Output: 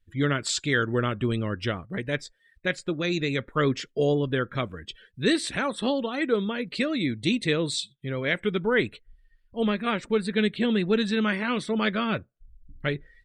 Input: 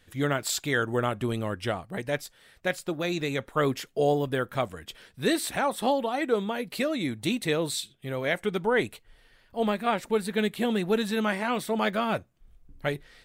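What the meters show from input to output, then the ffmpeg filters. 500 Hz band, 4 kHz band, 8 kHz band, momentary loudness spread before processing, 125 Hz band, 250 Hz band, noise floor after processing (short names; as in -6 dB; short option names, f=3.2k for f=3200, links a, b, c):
0.0 dB, +3.0 dB, -1.0 dB, 7 LU, +4.0 dB, +3.5 dB, -66 dBFS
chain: -filter_complex "[0:a]acrossover=split=8200[a][b];[b]acompressor=threshold=-58dB:ratio=4:attack=1:release=60[c];[a][c]amix=inputs=2:normalize=0,afftdn=nr=25:nf=-48,equalizer=f=770:w=1.8:g=-13,volume=4dB"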